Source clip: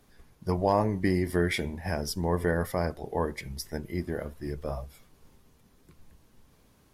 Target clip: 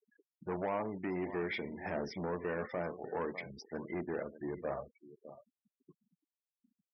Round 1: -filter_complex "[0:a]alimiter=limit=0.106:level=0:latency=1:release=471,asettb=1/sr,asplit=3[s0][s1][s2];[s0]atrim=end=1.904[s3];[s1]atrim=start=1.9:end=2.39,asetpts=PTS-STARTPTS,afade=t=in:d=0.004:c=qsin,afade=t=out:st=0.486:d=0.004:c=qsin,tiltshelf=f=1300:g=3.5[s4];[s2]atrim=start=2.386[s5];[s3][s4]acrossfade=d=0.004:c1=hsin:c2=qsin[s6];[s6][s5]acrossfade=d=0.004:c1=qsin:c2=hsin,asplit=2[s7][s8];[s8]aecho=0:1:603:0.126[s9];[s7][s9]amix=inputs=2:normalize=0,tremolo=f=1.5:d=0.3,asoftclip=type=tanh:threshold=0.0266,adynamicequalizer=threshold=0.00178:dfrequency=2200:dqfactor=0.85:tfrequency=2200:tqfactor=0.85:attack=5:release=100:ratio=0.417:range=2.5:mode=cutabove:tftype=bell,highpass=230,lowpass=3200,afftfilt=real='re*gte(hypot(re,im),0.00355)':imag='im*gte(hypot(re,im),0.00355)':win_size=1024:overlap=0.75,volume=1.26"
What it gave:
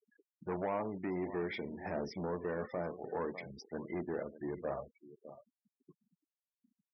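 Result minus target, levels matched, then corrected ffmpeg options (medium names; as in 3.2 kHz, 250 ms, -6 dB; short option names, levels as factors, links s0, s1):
2 kHz band -3.0 dB
-filter_complex "[0:a]alimiter=limit=0.106:level=0:latency=1:release=471,asettb=1/sr,asplit=3[s0][s1][s2];[s0]atrim=end=1.904[s3];[s1]atrim=start=1.9:end=2.39,asetpts=PTS-STARTPTS,afade=t=in:d=0.004:c=qsin,afade=t=out:st=0.486:d=0.004:c=qsin,tiltshelf=f=1300:g=3.5[s4];[s2]atrim=start=2.386[s5];[s3][s4]acrossfade=d=0.004:c1=hsin:c2=qsin[s6];[s6][s5]acrossfade=d=0.004:c1=qsin:c2=hsin,asplit=2[s7][s8];[s8]aecho=0:1:603:0.126[s9];[s7][s9]amix=inputs=2:normalize=0,tremolo=f=1.5:d=0.3,asoftclip=type=tanh:threshold=0.0266,highpass=230,lowpass=3200,afftfilt=real='re*gte(hypot(re,im),0.00355)':imag='im*gte(hypot(re,im),0.00355)':win_size=1024:overlap=0.75,volume=1.26"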